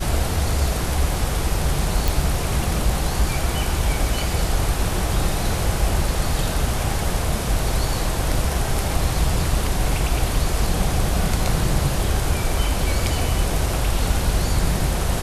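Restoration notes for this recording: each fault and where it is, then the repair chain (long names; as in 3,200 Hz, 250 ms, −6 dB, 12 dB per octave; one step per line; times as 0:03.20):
0:02.08: click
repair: click removal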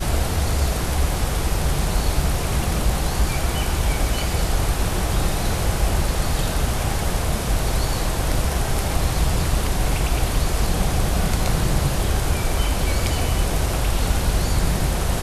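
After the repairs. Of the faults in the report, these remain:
none of them is left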